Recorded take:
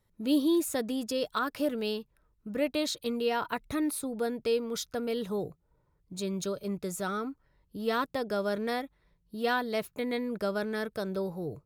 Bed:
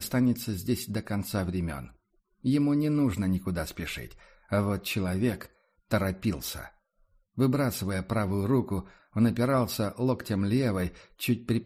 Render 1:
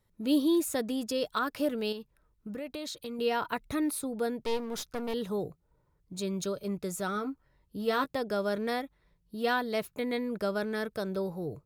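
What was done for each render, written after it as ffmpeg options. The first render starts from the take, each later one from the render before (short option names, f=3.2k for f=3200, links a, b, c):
-filter_complex "[0:a]asettb=1/sr,asplit=3[a][b][c];[a]atrim=end=1.924[d];[b]atrim=start=1.92:end=3.19,asetpts=PTS-STARTPTS,afade=t=in:d=0.004:c=qsin,afade=t=out:st=1.266:d=0.004:c=qsin,acompressor=threshold=-35dB:ratio=5:attack=3.2:release=140:knee=1:detection=peak[e];[c]atrim=start=3.186[f];[d][e]acrossfade=d=0.004:c1=hsin:c2=qsin[g];[g][f]acrossfade=d=0.004:c1=qsin:c2=hsin,asettb=1/sr,asplit=3[h][i][j];[h]atrim=end=4.404[k];[i]atrim=start=4.4:end=5.14,asetpts=PTS-STARTPTS,afade=t=in:d=0.004:c=qsin,afade=t=out:st=0.736:d=0.004:c=qsin,aeval=exprs='clip(val(0),-1,0.00891)':c=same[l];[j]atrim=start=5.136[m];[k][l]acrossfade=d=0.004:c1=hsin:c2=qsin[n];[n][m]acrossfade=d=0.004:c1=qsin:c2=hsin,asettb=1/sr,asplit=3[o][p][q];[o]atrim=end=7.144[r];[p]atrim=start=7.14:end=8.15,asetpts=PTS-STARTPTS,afade=t=in:d=0.004:c=qsin,afade=t=out:st=1.006:d=0.004:c=qsin,asplit=2[s][t];[t]adelay=15,volume=-9dB[u];[s][u]amix=inputs=2:normalize=0,atrim=end_sample=44541[v];[q]atrim=start=8.146[w];[r][v]acrossfade=d=0.004:c1=hsin:c2=qsin[x];[x][w]acrossfade=d=0.004:c1=qsin:c2=hsin"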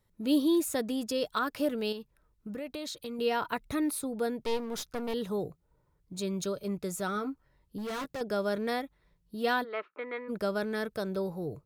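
-filter_complex "[0:a]asettb=1/sr,asplit=3[a][b][c];[a]atrim=end=7.784[d];[b]atrim=start=7.78:end=8.21,asetpts=PTS-STARTPTS,afade=t=in:d=0.004:c=qsin,afade=t=out:st=0.426:d=0.004:c=qsin,volume=34dB,asoftclip=hard,volume=-34dB[e];[c]atrim=start=8.206[f];[d][e]acrossfade=d=0.004:c1=hsin:c2=qsin[g];[g][f]acrossfade=d=0.004:c1=qsin:c2=hsin,asplit=3[h][i][j];[h]afade=t=out:st=9.63:d=0.02[k];[i]highpass=f=370:w=0.5412,highpass=f=370:w=1.3066,equalizer=f=460:t=q:w=4:g=-4,equalizer=f=700:t=q:w=4:g=-7,equalizer=f=1.3k:t=q:w=4:g=10,lowpass=f=2.5k:w=0.5412,lowpass=f=2.5k:w=1.3066,afade=t=in:st=9.63:d=0.02,afade=t=out:st=10.28:d=0.02[l];[j]afade=t=in:st=10.28:d=0.02[m];[k][l][m]amix=inputs=3:normalize=0"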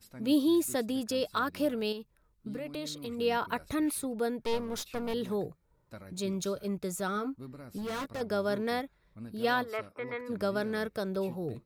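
-filter_complex "[1:a]volume=-21dB[a];[0:a][a]amix=inputs=2:normalize=0"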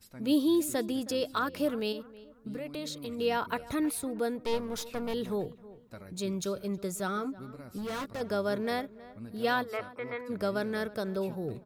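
-filter_complex "[0:a]asplit=2[a][b];[b]adelay=318,lowpass=f=2.1k:p=1,volume=-18dB,asplit=2[c][d];[d]adelay=318,lowpass=f=2.1k:p=1,volume=0.34,asplit=2[e][f];[f]adelay=318,lowpass=f=2.1k:p=1,volume=0.34[g];[a][c][e][g]amix=inputs=4:normalize=0"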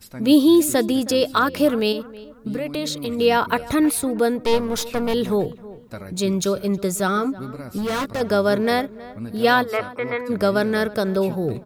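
-af "volume=12dB"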